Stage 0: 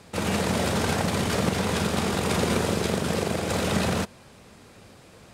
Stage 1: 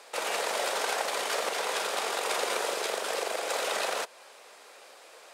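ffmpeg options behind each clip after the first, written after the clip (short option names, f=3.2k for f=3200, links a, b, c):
-filter_complex "[0:a]highpass=f=490:w=0.5412,highpass=f=490:w=1.3066,asplit=2[a][b];[b]acompressor=threshold=-37dB:ratio=6,volume=-1dB[c];[a][c]amix=inputs=2:normalize=0,volume=-3.5dB"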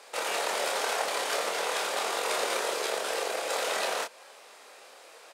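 -filter_complex "[0:a]asplit=2[a][b];[b]adelay=26,volume=-4dB[c];[a][c]amix=inputs=2:normalize=0,volume=-1dB"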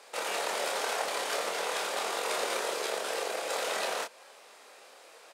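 -af "lowshelf=f=130:g=7,volume=-2.5dB"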